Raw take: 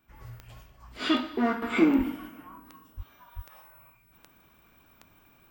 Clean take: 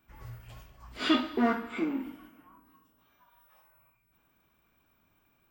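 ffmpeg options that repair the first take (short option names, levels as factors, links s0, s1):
-filter_complex "[0:a]adeclick=t=4,asplit=3[s0][s1][s2];[s0]afade=t=out:st=1.97:d=0.02[s3];[s1]highpass=f=140:w=0.5412,highpass=f=140:w=1.3066,afade=t=in:st=1.97:d=0.02,afade=t=out:st=2.09:d=0.02[s4];[s2]afade=t=in:st=2.09:d=0.02[s5];[s3][s4][s5]amix=inputs=3:normalize=0,asplit=3[s6][s7][s8];[s6]afade=t=out:st=2.96:d=0.02[s9];[s7]highpass=f=140:w=0.5412,highpass=f=140:w=1.3066,afade=t=in:st=2.96:d=0.02,afade=t=out:st=3.08:d=0.02[s10];[s8]afade=t=in:st=3.08:d=0.02[s11];[s9][s10][s11]amix=inputs=3:normalize=0,asplit=3[s12][s13][s14];[s12]afade=t=out:st=3.35:d=0.02[s15];[s13]highpass=f=140:w=0.5412,highpass=f=140:w=1.3066,afade=t=in:st=3.35:d=0.02,afade=t=out:st=3.47:d=0.02[s16];[s14]afade=t=in:st=3.47:d=0.02[s17];[s15][s16][s17]amix=inputs=3:normalize=0,asetnsamples=n=441:p=0,asendcmd='1.62 volume volume -10dB',volume=1"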